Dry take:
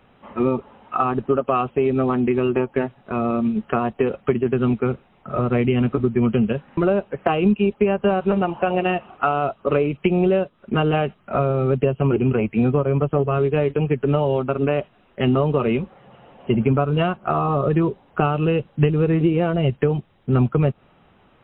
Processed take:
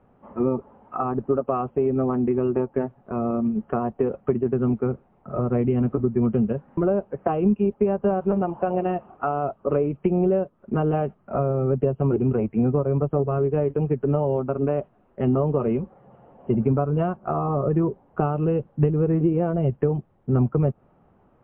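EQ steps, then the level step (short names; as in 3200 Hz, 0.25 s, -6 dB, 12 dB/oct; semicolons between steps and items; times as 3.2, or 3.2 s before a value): LPF 1000 Hz 12 dB/oct; -2.5 dB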